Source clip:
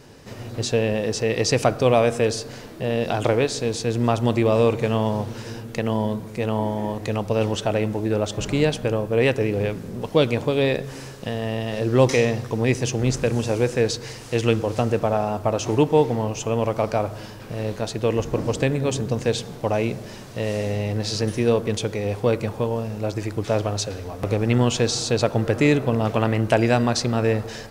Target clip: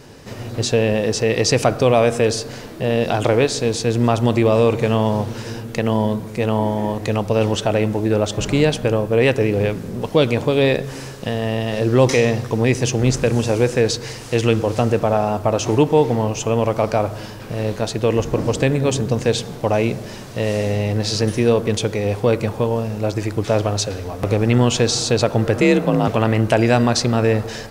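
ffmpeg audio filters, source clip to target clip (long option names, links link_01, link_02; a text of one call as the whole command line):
ffmpeg -i in.wav -filter_complex "[0:a]asplit=2[link_01][link_02];[link_02]alimiter=limit=-11.5dB:level=0:latency=1,volume=-0.5dB[link_03];[link_01][link_03]amix=inputs=2:normalize=0,asettb=1/sr,asplit=3[link_04][link_05][link_06];[link_04]atrim=end=25.614[link_07];[link_05]atrim=start=25.61:end=26.08,asetpts=PTS-STARTPTS,afade=type=in:duration=0.004:curve=qsin,afade=type=out:start_time=0.466:duration=0.004:curve=qsin,afreqshift=42[link_08];[link_06]atrim=start=26.076[link_09];[link_07][link_08]acrossfade=duration=0.004:curve1=hsin:curve2=qsin[link_10];[link_10][link_09]acrossfade=duration=0.004:curve1=qsin:curve2=hsin,volume=-1dB" out.wav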